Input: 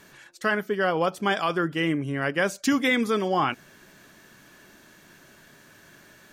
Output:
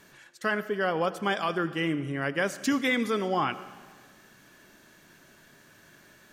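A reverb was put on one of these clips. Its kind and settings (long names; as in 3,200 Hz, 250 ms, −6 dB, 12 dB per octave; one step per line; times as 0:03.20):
comb and all-pass reverb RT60 1.5 s, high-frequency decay 0.9×, pre-delay 40 ms, DRR 14.5 dB
level −3.5 dB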